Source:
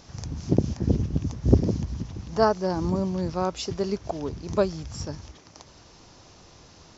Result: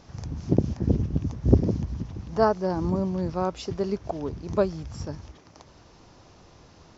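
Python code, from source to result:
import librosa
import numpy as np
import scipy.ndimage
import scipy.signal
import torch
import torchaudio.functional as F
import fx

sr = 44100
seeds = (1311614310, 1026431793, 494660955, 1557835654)

y = fx.high_shelf(x, sr, hz=3400.0, db=-9.5)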